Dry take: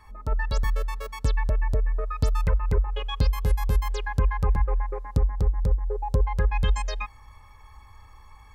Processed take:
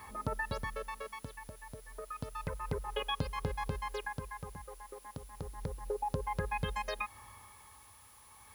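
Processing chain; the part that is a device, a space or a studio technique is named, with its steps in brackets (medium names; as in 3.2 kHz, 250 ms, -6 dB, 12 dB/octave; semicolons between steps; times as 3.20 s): medium wave at night (band-pass 120–3500 Hz; compression, threshold -37 dBFS, peak gain reduction 15 dB; tremolo 0.31 Hz, depth 79%; whistle 10 kHz -66 dBFS; white noise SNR 23 dB); trim +5.5 dB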